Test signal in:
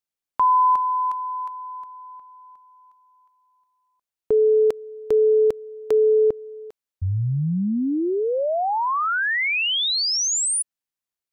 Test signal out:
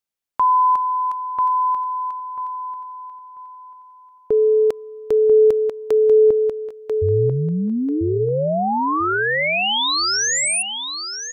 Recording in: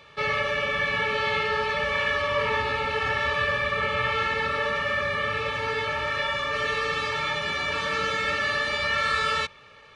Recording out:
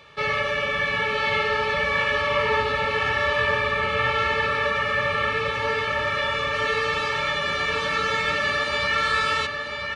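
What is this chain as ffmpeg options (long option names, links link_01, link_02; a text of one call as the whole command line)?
ffmpeg -i in.wav -filter_complex "[0:a]asplit=2[link_01][link_02];[link_02]adelay=991,lowpass=frequency=4600:poles=1,volume=-5dB,asplit=2[link_03][link_04];[link_04]adelay=991,lowpass=frequency=4600:poles=1,volume=0.24,asplit=2[link_05][link_06];[link_06]adelay=991,lowpass=frequency=4600:poles=1,volume=0.24[link_07];[link_01][link_03][link_05][link_07]amix=inputs=4:normalize=0,volume=1.5dB" out.wav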